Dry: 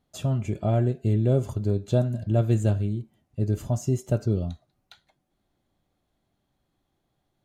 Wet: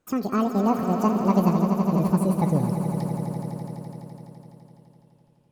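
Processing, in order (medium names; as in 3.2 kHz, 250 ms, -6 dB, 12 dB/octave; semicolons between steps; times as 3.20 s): gliding tape speed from 198% -> 72%; echo with a slow build-up 84 ms, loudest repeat 5, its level -11 dB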